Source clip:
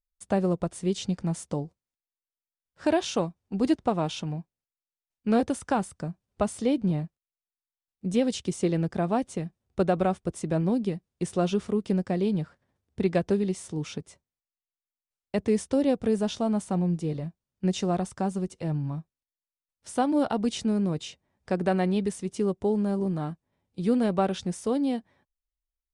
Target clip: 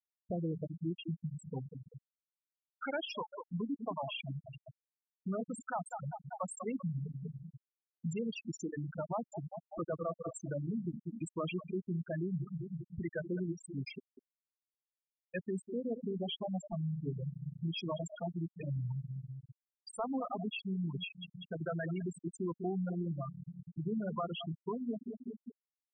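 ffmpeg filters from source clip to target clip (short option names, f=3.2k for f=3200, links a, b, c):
-filter_complex "[0:a]asetrate=39289,aresample=44100,atempo=1.12246,acrossover=split=700|740[a][b][c];[c]dynaudnorm=f=870:g=3:m=16dB[d];[a][b][d]amix=inputs=3:normalize=0,agate=range=-33dB:threshold=-41dB:ratio=3:detection=peak,asplit=2[e][f];[f]aecho=0:1:196|392|588|784|980|1176:0.251|0.138|0.076|0.0418|0.023|0.0126[g];[e][g]amix=inputs=2:normalize=0,asoftclip=type=tanh:threshold=-19.5dB,acompressor=threshold=-37dB:ratio=5,volume=33.5dB,asoftclip=hard,volume=-33.5dB,bandreject=f=50:t=h:w=6,bandreject=f=100:t=h:w=6,bandreject=f=150:t=h:w=6,bandreject=f=200:t=h:w=6,bandreject=f=250:t=h:w=6,bandreject=f=300:t=h:w=6,afftfilt=real='re*gte(hypot(re,im),0.0501)':imag='im*gte(hypot(re,im),0.0501)':win_size=1024:overlap=0.75,volume=3.5dB"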